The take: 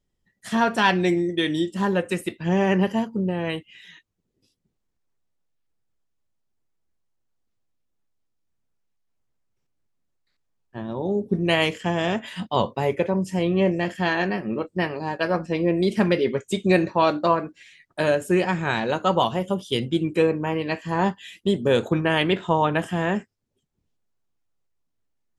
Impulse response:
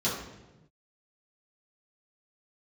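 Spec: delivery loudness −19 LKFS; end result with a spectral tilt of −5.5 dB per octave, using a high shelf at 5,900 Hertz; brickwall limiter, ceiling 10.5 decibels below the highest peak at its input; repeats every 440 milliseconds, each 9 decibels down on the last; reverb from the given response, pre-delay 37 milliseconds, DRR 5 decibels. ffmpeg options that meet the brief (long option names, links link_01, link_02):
-filter_complex "[0:a]highshelf=frequency=5900:gain=7,alimiter=limit=-15.5dB:level=0:latency=1,aecho=1:1:440|880|1320|1760:0.355|0.124|0.0435|0.0152,asplit=2[link_01][link_02];[1:a]atrim=start_sample=2205,adelay=37[link_03];[link_02][link_03]afir=irnorm=-1:irlink=0,volume=-14.5dB[link_04];[link_01][link_04]amix=inputs=2:normalize=0,volume=4.5dB"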